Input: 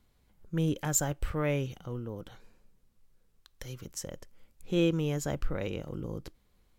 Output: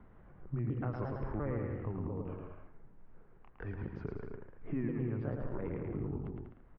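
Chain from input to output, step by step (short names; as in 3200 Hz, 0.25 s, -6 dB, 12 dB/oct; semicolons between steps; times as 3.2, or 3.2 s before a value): repeated pitch sweeps -7 st, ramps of 0.349 s; LPF 1700 Hz 24 dB/oct; compressor 3:1, threshold -38 dBFS, peak gain reduction 11.5 dB; bouncing-ball echo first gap 0.11 s, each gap 0.75×, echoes 5; three-band squash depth 40%; gain +2 dB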